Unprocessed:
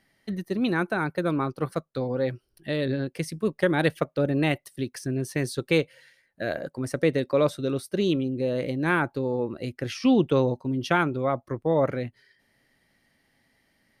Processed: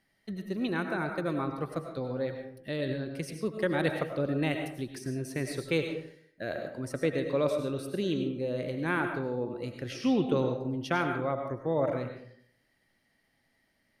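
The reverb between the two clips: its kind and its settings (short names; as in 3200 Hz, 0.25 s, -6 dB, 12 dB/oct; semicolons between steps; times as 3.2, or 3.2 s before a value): digital reverb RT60 0.64 s, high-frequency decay 0.6×, pre-delay 60 ms, DRR 4.5 dB; gain -6.5 dB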